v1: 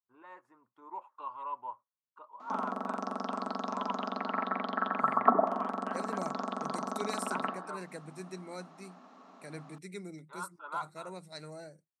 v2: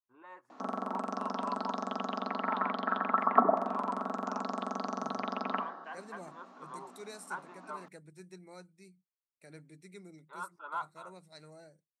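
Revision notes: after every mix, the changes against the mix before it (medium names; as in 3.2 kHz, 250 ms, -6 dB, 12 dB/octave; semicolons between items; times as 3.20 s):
second voice -7.5 dB; background: entry -1.90 s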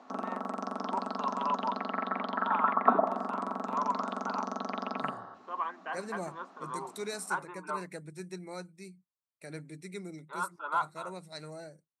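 first voice +7.0 dB; second voice +9.0 dB; background: entry -0.50 s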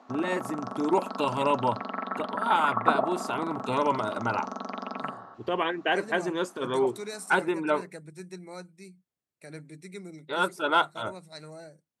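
first voice: remove band-pass filter 1.1 kHz, Q 5.2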